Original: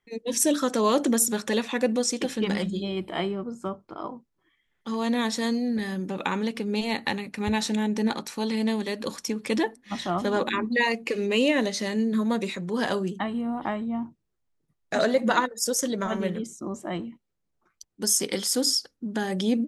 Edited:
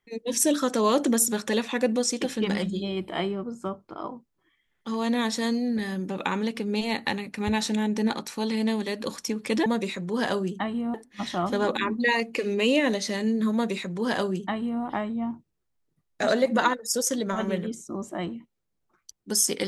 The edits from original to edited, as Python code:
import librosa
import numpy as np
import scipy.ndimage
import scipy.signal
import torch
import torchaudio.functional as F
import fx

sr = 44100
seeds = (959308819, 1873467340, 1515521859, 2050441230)

y = fx.edit(x, sr, fx.duplicate(start_s=12.26, length_s=1.28, to_s=9.66), tone=tone)